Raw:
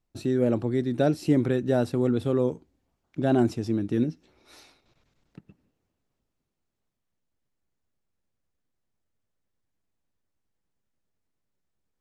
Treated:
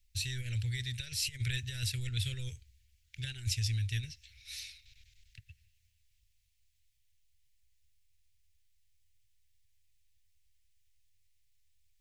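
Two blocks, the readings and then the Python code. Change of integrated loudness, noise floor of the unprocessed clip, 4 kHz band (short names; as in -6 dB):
-11.0 dB, -80 dBFS, +8.5 dB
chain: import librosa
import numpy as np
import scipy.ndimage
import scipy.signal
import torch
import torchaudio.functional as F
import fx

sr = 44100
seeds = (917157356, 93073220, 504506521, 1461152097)

y = fx.over_compress(x, sr, threshold_db=-24.0, ratio=-0.5)
y = scipy.signal.sosfilt(scipy.signal.cheby2(4, 40, [170.0, 1200.0], 'bandstop', fs=sr, output='sos'), y)
y = y * librosa.db_to_amplitude(8.5)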